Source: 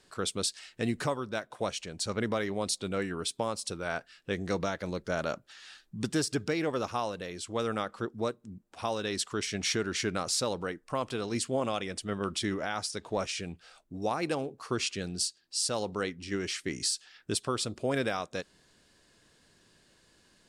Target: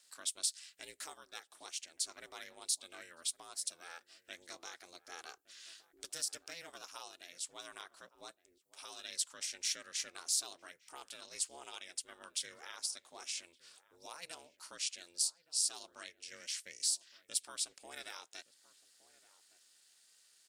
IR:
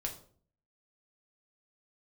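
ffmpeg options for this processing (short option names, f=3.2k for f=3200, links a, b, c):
-filter_complex "[0:a]aeval=exprs='val(0)*sin(2*PI*170*n/s)':c=same,asplit=2[a][b];[b]acompressor=threshold=-46dB:ratio=6,volume=-0.5dB[c];[a][c]amix=inputs=2:normalize=0,aderivative,asplit=2[d][e];[e]adelay=1166,volume=-18dB,highshelf=f=4k:g=-26.2[f];[d][f]amix=inputs=2:normalize=0"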